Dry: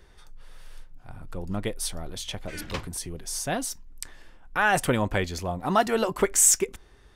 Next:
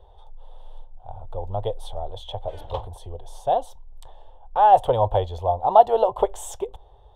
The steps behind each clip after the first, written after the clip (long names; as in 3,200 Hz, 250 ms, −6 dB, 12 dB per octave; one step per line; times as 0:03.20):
drawn EQ curve 110 Hz 0 dB, 170 Hz −19 dB, 300 Hz −17 dB, 480 Hz +3 dB, 860 Hz +9 dB, 1,400 Hz −18 dB, 2,300 Hz −25 dB, 3,400 Hz −4 dB, 4,800 Hz −25 dB, 11,000 Hz −23 dB
level +4 dB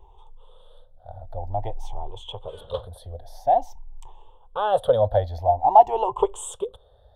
rippled gain that drifts along the octave scale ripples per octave 0.7, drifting +0.5 Hz, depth 16 dB
level −4 dB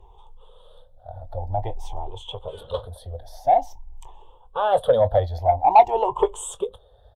spectral magnitudes quantised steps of 15 dB
harmonic generator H 5 −25 dB, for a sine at −1.5 dBFS
double-tracking delay 22 ms −14 dB